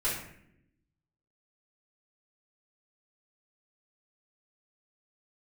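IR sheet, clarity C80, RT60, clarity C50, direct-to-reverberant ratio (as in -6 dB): 6.5 dB, 0.75 s, 3.0 dB, -10.0 dB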